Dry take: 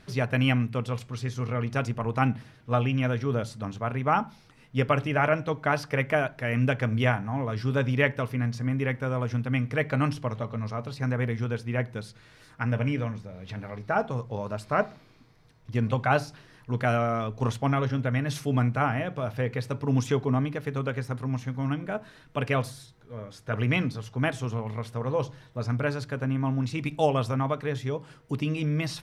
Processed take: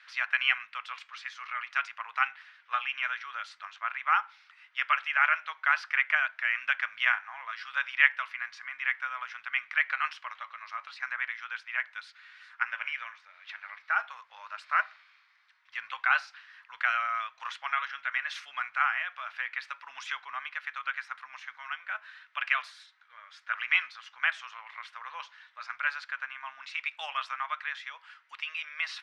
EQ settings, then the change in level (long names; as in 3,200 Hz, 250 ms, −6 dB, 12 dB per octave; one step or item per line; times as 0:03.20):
inverse Chebyshev high-pass filter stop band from 400 Hz, stop band 60 dB
low-pass filter 2,600 Hz 12 dB per octave
+7.0 dB